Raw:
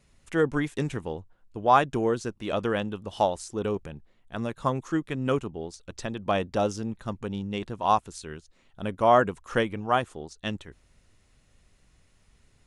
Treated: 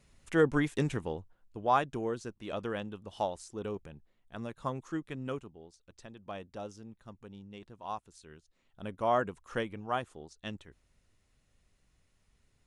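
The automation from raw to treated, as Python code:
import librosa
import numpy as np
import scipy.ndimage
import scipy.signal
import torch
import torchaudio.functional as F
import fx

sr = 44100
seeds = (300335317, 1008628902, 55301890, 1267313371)

y = fx.gain(x, sr, db=fx.line((0.89, -1.5), (1.97, -9.0), (5.17, -9.0), (5.59, -16.5), (8.02, -16.5), (8.82, -9.0)))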